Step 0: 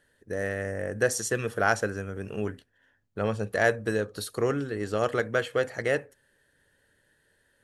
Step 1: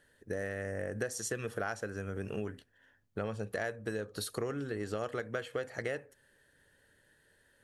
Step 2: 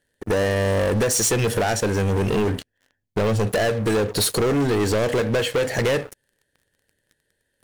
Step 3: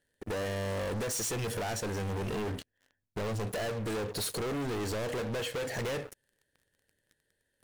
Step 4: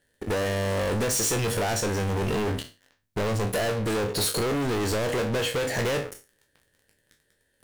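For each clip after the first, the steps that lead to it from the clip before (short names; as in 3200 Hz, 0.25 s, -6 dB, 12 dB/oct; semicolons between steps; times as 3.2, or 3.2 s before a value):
compressor 6:1, threshold -33 dBFS, peak gain reduction 15 dB
bell 1200 Hz -13.5 dB 0.55 oct; sample leveller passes 5; gain +6 dB
soft clip -26 dBFS, distortion -13 dB; gain -6 dB
spectral trails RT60 0.31 s; gain +7 dB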